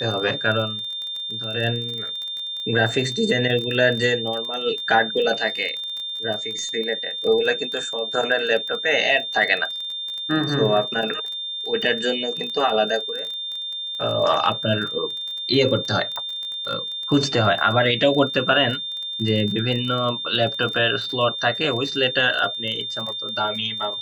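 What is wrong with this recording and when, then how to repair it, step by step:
crackle 20/s -27 dBFS
tone 3600 Hz -27 dBFS
16.16 pop -15 dBFS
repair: de-click; notch 3600 Hz, Q 30

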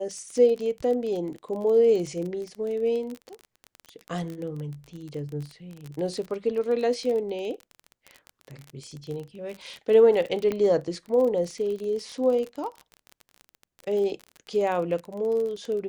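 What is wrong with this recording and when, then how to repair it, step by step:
crackle 26/s -31 dBFS
10.52 pop -16 dBFS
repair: de-click

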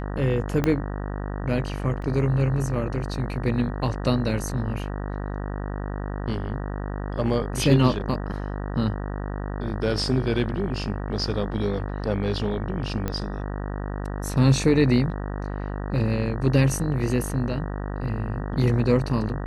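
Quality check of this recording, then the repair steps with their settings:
buzz 50 Hz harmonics 38 -30 dBFS
0.64 pop -10 dBFS
2.02 gap 3.4 ms
13.08 pop -14 dBFS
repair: de-click; de-hum 50 Hz, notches 38; interpolate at 2.02, 3.4 ms

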